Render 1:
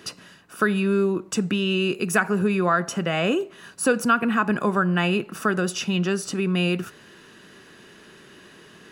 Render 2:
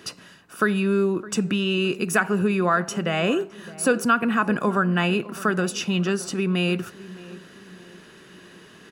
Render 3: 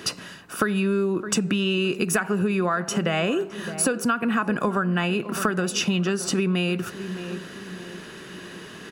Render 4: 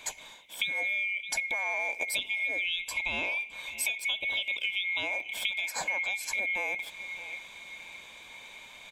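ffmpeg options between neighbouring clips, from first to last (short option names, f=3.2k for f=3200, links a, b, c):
-filter_complex "[0:a]asplit=2[a][b];[b]adelay=613,lowpass=f=1.2k:p=1,volume=-17dB,asplit=2[c][d];[d]adelay=613,lowpass=f=1.2k:p=1,volume=0.49,asplit=2[e][f];[f]adelay=613,lowpass=f=1.2k:p=1,volume=0.49,asplit=2[g][h];[h]adelay=613,lowpass=f=1.2k:p=1,volume=0.49[i];[a][c][e][g][i]amix=inputs=5:normalize=0"
-af "acompressor=threshold=-27dB:ratio=10,volume=7.5dB"
-af "afftfilt=real='real(if(lt(b,920),b+92*(1-2*mod(floor(b/92),2)),b),0)':imag='imag(if(lt(b,920),b+92*(1-2*mod(floor(b/92),2)),b),0)':win_size=2048:overlap=0.75,volume=-8.5dB"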